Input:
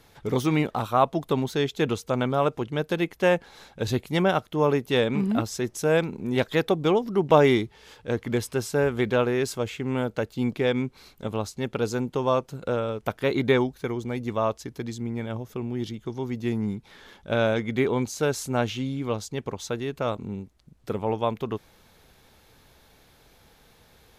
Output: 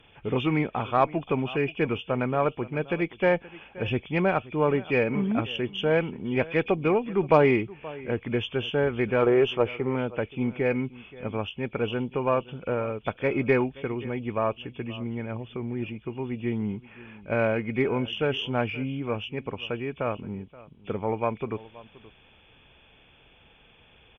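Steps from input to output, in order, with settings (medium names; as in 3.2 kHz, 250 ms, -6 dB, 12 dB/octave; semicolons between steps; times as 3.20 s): knee-point frequency compression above 2.2 kHz 4:1; time-frequency box 9.22–9.95 s, 330–1400 Hz +7 dB; on a send: delay 526 ms -19.5 dB; on the sum: Chebyshev shaper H 6 -31 dB, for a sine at -4 dBFS; trim -1.5 dB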